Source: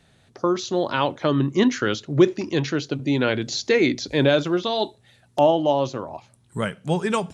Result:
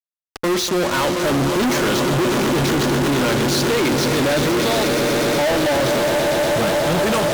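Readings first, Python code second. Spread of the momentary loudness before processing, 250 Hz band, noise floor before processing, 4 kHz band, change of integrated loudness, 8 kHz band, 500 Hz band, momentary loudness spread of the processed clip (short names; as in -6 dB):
10 LU, +3.5 dB, -59 dBFS, +7.0 dB, +4.5 dB, +12.5 dB, +4.0 dB, 1 LU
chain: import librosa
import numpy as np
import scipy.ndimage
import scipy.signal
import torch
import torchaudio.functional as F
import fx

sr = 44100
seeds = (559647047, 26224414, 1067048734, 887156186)

y = fx.echo_swell(x, sr, ms=121, loudest=8, wet_db=-14.0)
y = fx.fuzz(y, sr, gain_db=39.0, gate_db=-34.0)
y = y * librosa.db_to_amplitude(-3.0)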